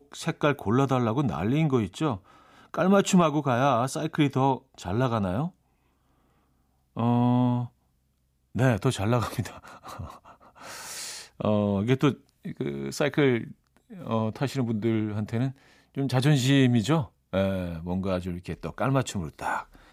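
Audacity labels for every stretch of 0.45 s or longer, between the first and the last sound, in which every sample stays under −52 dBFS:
5.510000	6.960000	silence
7.690000	8.550000	silence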